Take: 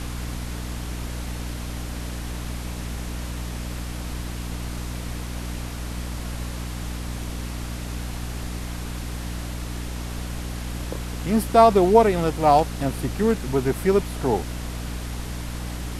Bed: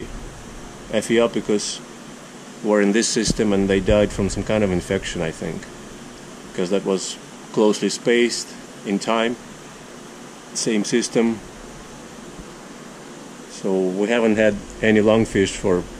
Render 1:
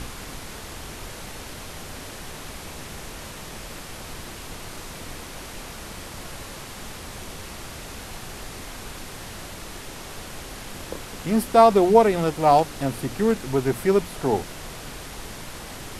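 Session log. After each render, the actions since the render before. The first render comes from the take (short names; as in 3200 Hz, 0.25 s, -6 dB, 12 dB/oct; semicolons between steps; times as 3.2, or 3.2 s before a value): notches 60/120/180/240/300 Hz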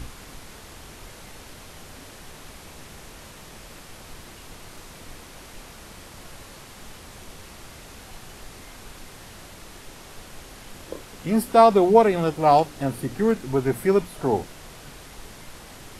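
noise print and reduce 6 dB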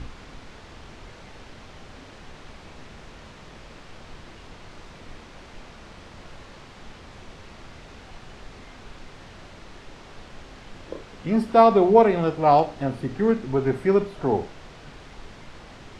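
air absorption 130 m; Schroeder reverb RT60 0.35 s, combs from 27 ms, DRR 12 dB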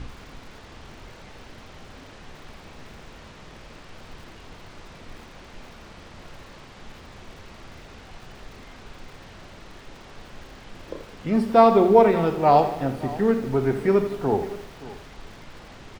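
echo 0.571 s -18 dB; lo-fi delay 83 ms, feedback 55%, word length 7-bit, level -12 dB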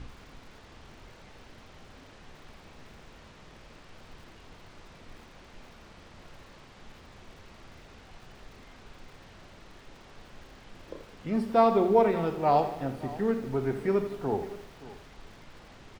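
gain -7 dB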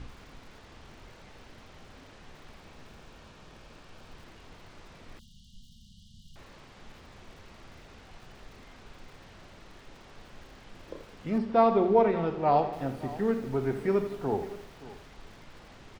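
2.82–4.15 notch 2000 Hz; 5.19–6.36 brick-wall FIR band-stop 240–2800 Hz; 11.38–12.73 air absorption 120 m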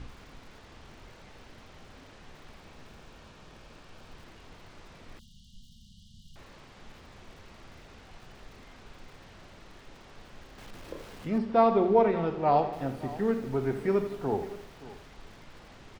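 10.58–11.28 zero-crossing step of -48 dBFS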